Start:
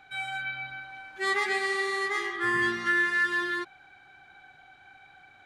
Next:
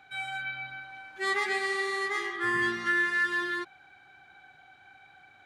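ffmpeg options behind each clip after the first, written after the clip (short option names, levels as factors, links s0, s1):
-af "highpass=56,volume=0.841"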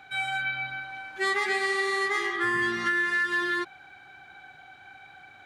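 -af "acompressor=threshold=0.0355:ratio=6,volume=2"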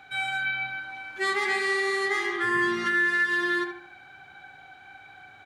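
-filter_complex "[0:a]asplit=2[s0][s1];[s1]adelay=74,lowpass=f=2500:p=1,volume=0.501,asplit=2[s2][s3];[s3]adelay=74,lowpass=f=2500:p=1,volume=0.4,asplit=2[s4][s5];[s5]adelay=74,lowpass=f=2500:p=1,volume=0.4,asplit=2[s6][s7];[s7]adelay=74,lowpass=f=2500:p=1,volume=0.4,asplit=2[s8][s9];[s9]adelay=74,lowpass=f=2500:p=1,volume=0.4[s10];[s0][s2][s4][s6][s8][s10]amix=inputs=6:normalize=0"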